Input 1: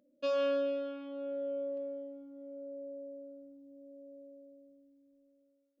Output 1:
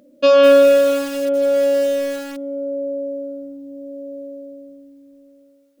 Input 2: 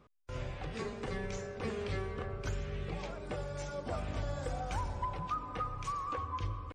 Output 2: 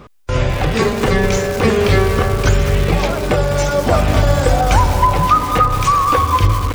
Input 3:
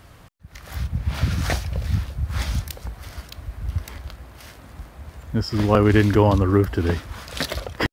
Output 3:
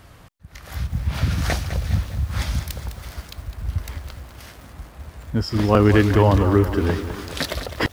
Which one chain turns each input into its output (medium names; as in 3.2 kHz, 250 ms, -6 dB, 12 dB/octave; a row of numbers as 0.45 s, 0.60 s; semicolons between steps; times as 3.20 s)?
bit-crushed delay 206 ms, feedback 55%, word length 7-bit, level -10 dB; peak normalisation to -1.5 dBFS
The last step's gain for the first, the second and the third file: +20.0 dB, +24.0 dB, +0.5 dB